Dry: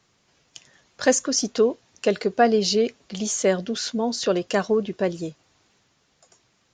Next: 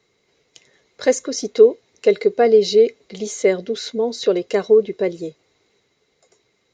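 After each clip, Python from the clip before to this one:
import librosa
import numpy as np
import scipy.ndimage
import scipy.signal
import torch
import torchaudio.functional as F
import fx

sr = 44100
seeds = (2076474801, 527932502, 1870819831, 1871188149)

y = fx.small_body(x, sr, hz=(430.0, 2100.0, 3900.0), ring_ms=25, db=14)
y = y * 10.0 ** (-4.5 / 20.0)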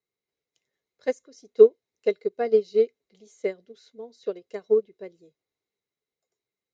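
y = fx.upward_expand(x, sr, threshold_db=-22.0, expansion=2.5)
y = y * 10.0 ** (-1.5 / 20.0)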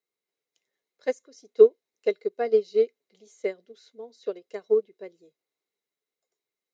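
y = scipy.signal.sosfilt(scipy.signal.bessel(2, 270.0, 'highpass', norm='mag', fs=sr, output='sos'), x)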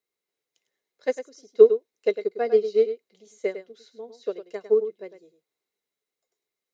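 y = x + 10.0 ** (-11.0 / 20.0) * np.pad(x, (int(103 * sr / 1000.0), 0))[:len(x)]
y = y * 10.0 ** (1.5 / 20.0)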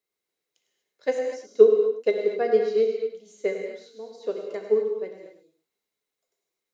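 y = fx.rev_gated(x, sr, seeds[0], gate_ms=270, shape='flat', drr_db=2.5)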